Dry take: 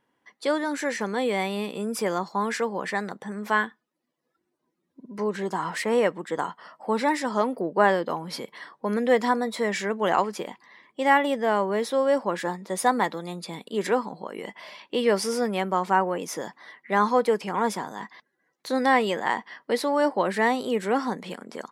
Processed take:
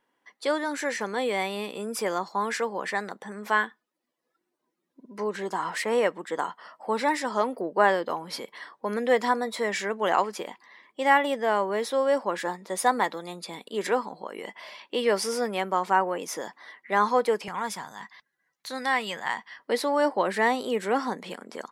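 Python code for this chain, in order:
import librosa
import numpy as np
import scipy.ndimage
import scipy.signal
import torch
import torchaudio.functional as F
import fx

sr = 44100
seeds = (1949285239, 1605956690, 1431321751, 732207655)

y = fx.peak_eq(x, sr, hz=fx.steps((0.0, 89.0), (17.48, 350.0), (19.59, 69.0)), db=-14.0, octaves=2.2)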